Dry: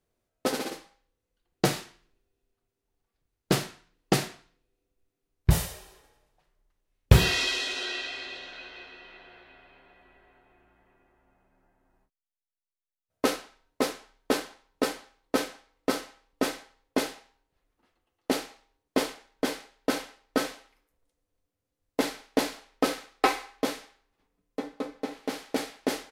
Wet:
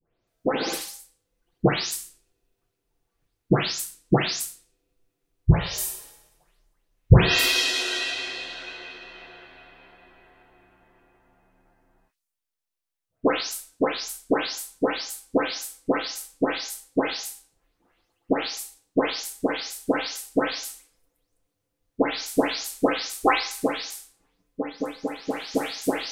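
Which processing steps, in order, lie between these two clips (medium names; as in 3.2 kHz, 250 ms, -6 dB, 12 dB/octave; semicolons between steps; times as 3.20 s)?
delay that grows with frequency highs late, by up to 275 ms; trim +6 dB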